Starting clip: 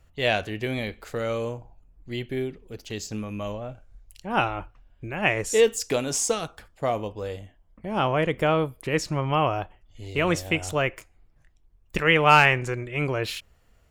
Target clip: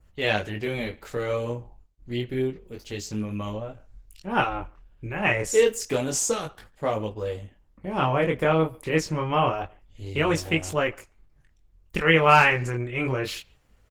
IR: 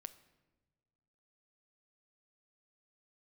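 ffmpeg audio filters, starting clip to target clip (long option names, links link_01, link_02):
-filter_complex "[0:a]bandreject=frequency=680:width=12,asettb=1/sr,asplit=3[link_01][link_02][link_03];[link_01]atrim=end=1.174[link_04];[link_02]atrim=start=1.17:end=2.22,asetpts=PTS-STARTPTS,afade=type=in:duration=0.004:curve=qsin,afade=type=out:start_time=1.046:duration=0.004:curve=qsin,agate=range=-59dB:threshold=-50dB:ratio=16:detection=peak[link_05];[link_03]atrim=start=2.216[link_06];[link_04][link_05]acrossfade=duration=0.004:curve1=hsin:curve2=qsin[link_07];[link_07][link_06]acrossfade=duration=0.004:curve1=qsin:curve2=hsin,adynamicequalizer=threshold=0.0112:dfrequency=3400:dqfactor=1.3:tfrequency=3400:tqfactor=1.3:attack=5:release=100:ratio=0.375:range=2:mode=cutabove:tftype=bell,flanger=delay=18.5:depth=6.9:speed=0.28,asplit=2[link_08][link_09];[link_09]adelay=140,highpass=300,lowpass=3400,asoftclip=type=hard:threshold=-17.5dB,volume=-26dB[link_10];[link_08][link_10]amix=inputs=2:normalize=0,volume=4dB" -ar 48000 -c:a libopus -b:a 16k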